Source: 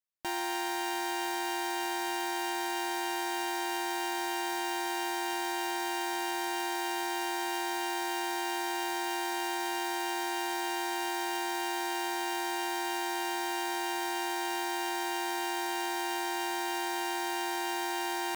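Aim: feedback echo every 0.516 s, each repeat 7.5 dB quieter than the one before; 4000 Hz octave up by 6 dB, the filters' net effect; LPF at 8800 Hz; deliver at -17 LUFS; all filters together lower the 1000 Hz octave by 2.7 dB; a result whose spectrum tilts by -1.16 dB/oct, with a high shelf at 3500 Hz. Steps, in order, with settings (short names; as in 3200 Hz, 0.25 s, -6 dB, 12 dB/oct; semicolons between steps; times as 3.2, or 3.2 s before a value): LPF 8800 Hz; bell 1000 Hz -4 dB; high shelf 3500 Hz +6 dB; bell 4000 Hz +4 dB; feedback echo 0.516 s, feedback 42%, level -7.5 dB; gain +13.5 dB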